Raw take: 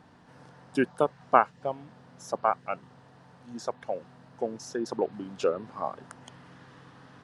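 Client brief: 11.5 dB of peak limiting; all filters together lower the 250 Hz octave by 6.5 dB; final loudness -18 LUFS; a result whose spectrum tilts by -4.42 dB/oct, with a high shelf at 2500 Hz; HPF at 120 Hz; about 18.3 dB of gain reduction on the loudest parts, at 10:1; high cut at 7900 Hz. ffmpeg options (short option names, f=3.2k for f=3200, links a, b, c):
-af "highpass=120,lowpass=7.9k,equalizer=f=250:t=o:g=-8,highshelf=f=2.5k:g=-5.5,acompressor=threshold=-33dB:ratio=10,volume=29dB,alimiter=limit=-1.5dB:level=0:latency=1"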